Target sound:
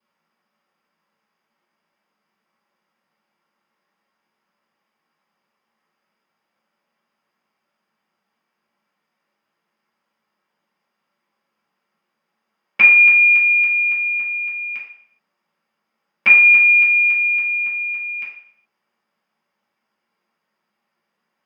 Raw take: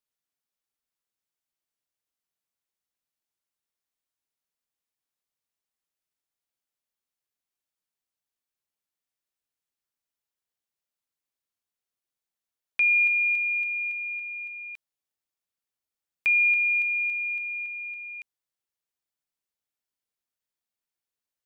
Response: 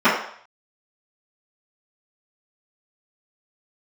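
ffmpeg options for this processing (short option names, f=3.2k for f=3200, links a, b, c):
-filter_complex "[1:a]atrim=start_sample=2205,asetrate=40572,aresample=44100[a];[0:a][a]afir=irnorm=-1:irlink=0,volume=-2.5dB"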